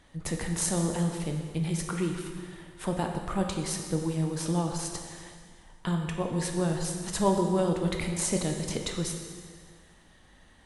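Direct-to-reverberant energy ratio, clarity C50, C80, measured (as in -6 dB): 2.5 dB, 4.5 dB, 6.0 dB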